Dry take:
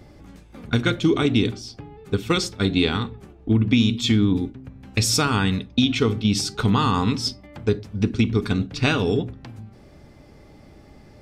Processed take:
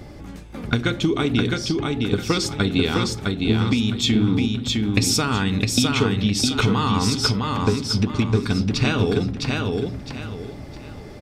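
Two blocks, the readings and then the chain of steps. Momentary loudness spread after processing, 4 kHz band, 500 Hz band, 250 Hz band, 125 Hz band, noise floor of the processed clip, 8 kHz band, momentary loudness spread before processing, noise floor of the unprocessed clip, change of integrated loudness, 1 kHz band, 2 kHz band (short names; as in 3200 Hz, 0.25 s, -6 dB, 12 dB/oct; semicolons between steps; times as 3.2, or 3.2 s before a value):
13 LU, +2.5 dB, +1.0 dB, +0.5 dB, +1.5 dB, -38 dBFS, +3.0 dB, 13 LU, -48 dBFS, +0.5 dB, +1.0 dB, +1.5 dB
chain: compressor, threshold -25 dBFS, peak gain reduction 11.5 dB; on a send: feedback echo 0.659 s, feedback 30%, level -3 dB; on the sum: gain +7.5 dB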